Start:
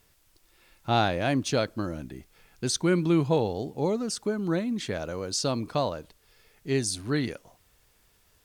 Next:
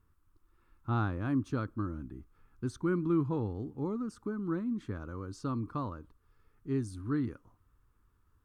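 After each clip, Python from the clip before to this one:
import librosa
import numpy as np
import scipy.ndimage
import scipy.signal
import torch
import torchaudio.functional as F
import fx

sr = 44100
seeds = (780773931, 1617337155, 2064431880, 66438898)

y = fx.curve_eq(x, sr, hz=(110.0, 160.0, 290.0, 660.0, 1200.0, 2000.0, 4900.0, 11000.0), db=(0, -8, -2, -21, -1, -19, -26, -21))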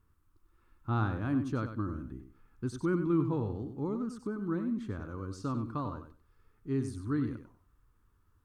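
y = fx.echo_feedback(x, sr, ms=96, feedback_pct=18, wet_db=-9.0)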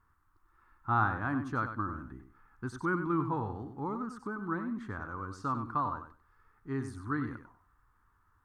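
y = fx.band_shelf(x, sr, hz=1200.0, db=12.0, octaves=1.7)
y = y * 10.0 ** (-3.5 / 20.0)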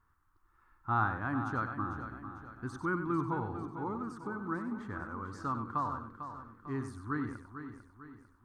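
y = fx.echo_feedback(x, sr, ms=448, feedback_pct=46, wet_db=-10.0)
y = y * 10.0 ** (-2.0 / 20.0)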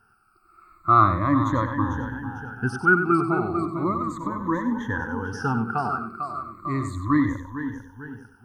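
y = fx.spec_ripple(x, sr, per_octave=1.1, drift_hz=-0.35, depth_db=23)
y = y * 10.0 ** (8.5 / 20.0)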